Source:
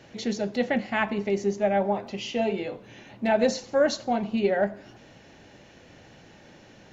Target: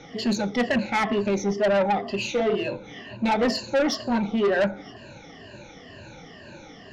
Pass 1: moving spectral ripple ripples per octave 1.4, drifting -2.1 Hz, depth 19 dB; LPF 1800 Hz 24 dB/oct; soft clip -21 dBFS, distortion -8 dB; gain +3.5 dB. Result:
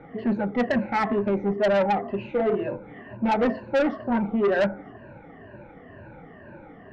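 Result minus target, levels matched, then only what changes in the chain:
8000 Hz band -17.0 dB
change: LPF 6500 Hz 24 dB/oct

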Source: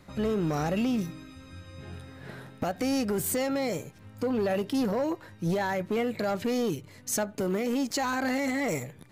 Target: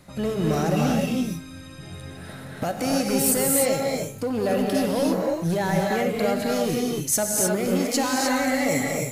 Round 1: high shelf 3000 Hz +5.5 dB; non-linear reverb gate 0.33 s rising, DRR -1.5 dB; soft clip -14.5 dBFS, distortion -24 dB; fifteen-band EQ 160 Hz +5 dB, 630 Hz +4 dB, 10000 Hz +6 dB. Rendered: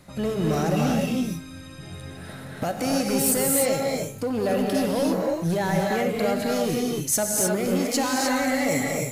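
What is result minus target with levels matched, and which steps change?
soft clip: distortion +12 dB
change: soft clip -7.5 dBFS, distortion -36 dB

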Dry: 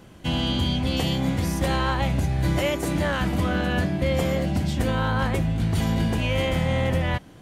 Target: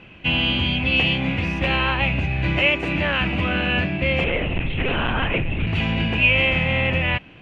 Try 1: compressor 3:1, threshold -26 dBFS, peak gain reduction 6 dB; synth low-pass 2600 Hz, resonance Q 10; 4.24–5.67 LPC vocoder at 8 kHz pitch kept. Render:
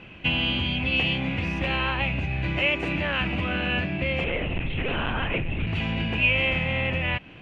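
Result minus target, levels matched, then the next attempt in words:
compressor: peak gain reduction +6 dB
synth low-pass 2600 Hz, resonance Q 10; 4.24–5.67 LPC vocoder at 8 kHz pitch kept

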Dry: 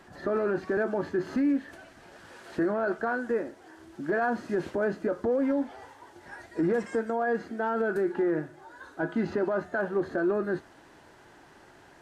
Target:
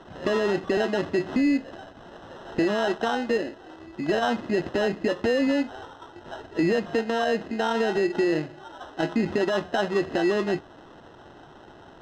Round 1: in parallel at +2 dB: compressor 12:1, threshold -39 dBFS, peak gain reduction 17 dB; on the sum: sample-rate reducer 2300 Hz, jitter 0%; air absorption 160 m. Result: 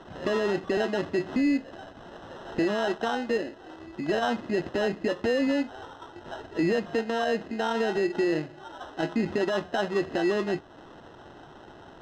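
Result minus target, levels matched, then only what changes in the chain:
compressor: peak gain reduction +8.5 dB
change: compressor 12:1, threshold -29.5 dBFS, peak gain reduction 8 dB

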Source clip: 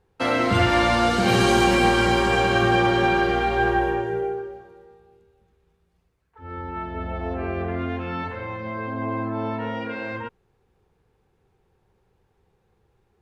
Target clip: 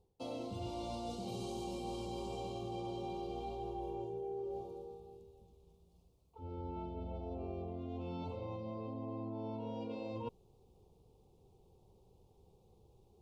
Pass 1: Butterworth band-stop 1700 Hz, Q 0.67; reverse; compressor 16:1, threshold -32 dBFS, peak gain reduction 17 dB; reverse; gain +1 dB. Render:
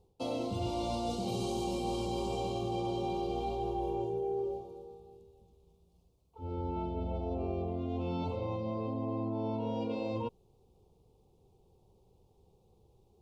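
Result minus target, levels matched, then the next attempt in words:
compressor: peak gain reduction -7.5 dB
Butterworth band-stop 1700 Hz, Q 0.67; reverse; compressor 16:1, threshold -40 dBFS, peak gain reduction 24.5 dB; reverse; gain +1 dB

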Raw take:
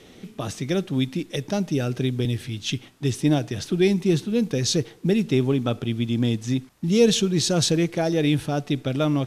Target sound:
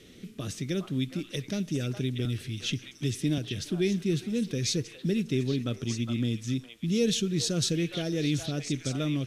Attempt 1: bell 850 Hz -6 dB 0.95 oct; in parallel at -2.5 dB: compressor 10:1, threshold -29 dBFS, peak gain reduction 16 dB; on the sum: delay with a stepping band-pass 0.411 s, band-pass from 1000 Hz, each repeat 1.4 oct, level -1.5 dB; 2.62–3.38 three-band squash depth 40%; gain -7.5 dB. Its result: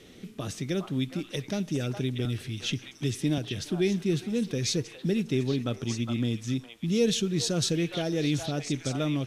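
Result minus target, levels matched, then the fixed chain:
1000 Hz band +5.0 dB
bell 850 Hz -15.5 dB 0.95 oct; in parallel at -2.5 dB: compressor 10:1, threshold -29 dBFS, peak gain reduction 14.5 dB; on the sum: delay with a stepping band-pass 0.411 s, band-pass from 1000 Hz, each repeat 1.4 oct, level -1.5 dB; 2.62–3.38 three-band squash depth 40%; gain -7.5 dB

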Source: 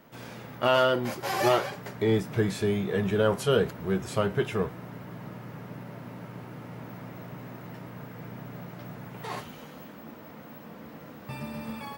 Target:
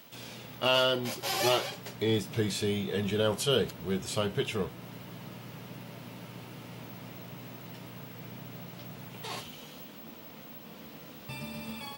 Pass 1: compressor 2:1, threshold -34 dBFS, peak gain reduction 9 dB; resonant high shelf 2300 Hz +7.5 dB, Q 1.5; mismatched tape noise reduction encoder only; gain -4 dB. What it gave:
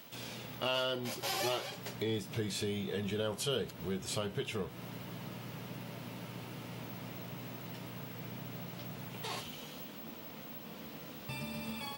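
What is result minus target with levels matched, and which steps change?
compressor: peak gain reduction +9 dB
remove: compressor 2:1, threshold -34 dBFS, peak gain reduction 9 dB

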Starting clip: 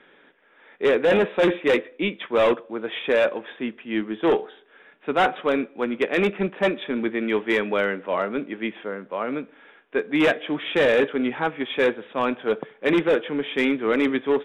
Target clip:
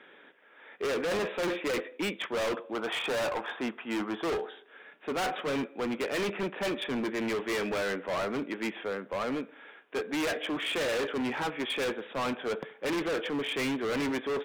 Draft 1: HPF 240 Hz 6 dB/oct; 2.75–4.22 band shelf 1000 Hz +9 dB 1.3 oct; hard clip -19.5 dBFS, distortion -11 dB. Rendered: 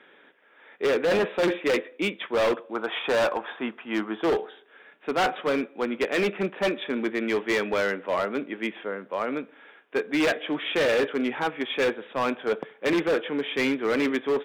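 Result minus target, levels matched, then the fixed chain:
hard clip: distortion -7 dB
HPF 240 Hz 6 dB/oct; 2.75–4.22 band shelf 1000 Hz +9 dB 1.3 oct; hard clip -28.5 dBFS, distortion -4 dB

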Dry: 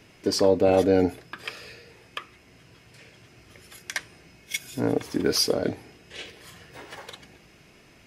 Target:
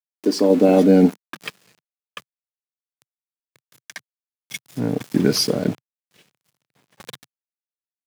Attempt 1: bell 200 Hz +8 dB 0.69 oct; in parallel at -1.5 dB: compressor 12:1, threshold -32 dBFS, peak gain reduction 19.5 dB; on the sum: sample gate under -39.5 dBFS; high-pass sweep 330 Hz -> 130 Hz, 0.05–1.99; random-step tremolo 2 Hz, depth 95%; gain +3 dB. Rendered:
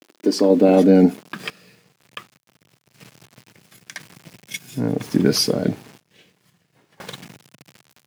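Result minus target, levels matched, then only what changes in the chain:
compressor: peak gain reduction -6 dB; sample gate: distortion -5 dB
change: compressor 12:1, threshold -38.5 dBFS, peak gain reduction 25.5 dB; change: sample gate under -33 dBFS

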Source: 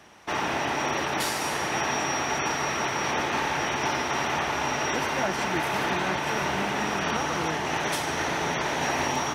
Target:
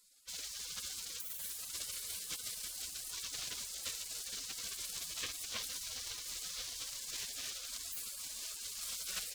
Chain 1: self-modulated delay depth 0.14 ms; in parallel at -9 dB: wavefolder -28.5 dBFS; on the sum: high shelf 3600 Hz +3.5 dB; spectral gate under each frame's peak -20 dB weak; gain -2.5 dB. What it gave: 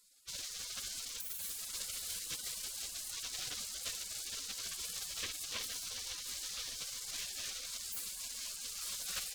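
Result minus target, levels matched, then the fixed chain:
wavefolder: distortion -38 dB
self-modulated delay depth 0.14 ms; in parallel at -9 dB: wavefolder -40 dBFS; on the sum: high shelf 3600 Hz +3.5 dB; spectral gate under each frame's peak -20 dB weak; gain -2.5 dB

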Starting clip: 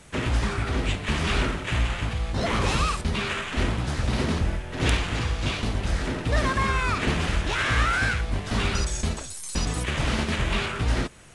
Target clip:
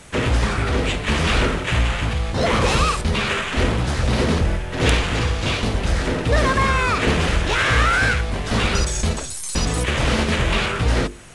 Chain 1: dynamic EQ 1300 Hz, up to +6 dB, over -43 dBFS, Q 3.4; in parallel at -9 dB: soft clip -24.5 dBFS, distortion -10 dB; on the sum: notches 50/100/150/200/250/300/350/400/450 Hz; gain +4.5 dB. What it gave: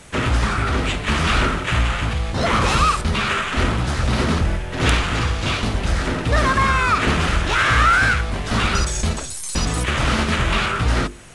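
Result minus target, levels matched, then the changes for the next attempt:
500 Hz band -3.5 dB
change: dynamic EQ 480 Hz, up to +6 dB, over -43 dBFS, Q 3.4

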